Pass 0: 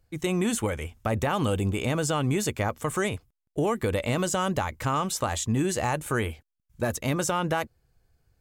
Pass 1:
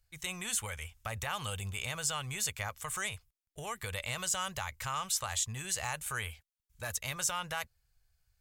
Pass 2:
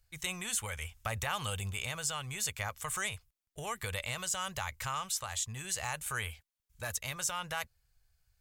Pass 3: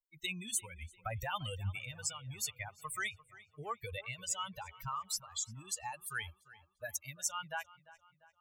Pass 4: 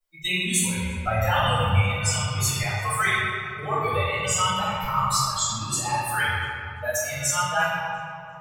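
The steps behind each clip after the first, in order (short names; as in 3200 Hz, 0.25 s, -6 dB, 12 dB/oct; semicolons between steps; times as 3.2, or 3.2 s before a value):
passive tone stack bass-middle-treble 10-0-10
vocal rider within 4 dB 0.5 s
per-bin expansion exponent 3; darkening echo 0.346 s, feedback 51%, low-pass 3700 Hz, level -18.5 dB; gain +3.5 dB
reverb RT60 2.5 s, pre-delay 3 ms, DRR -15.5 dB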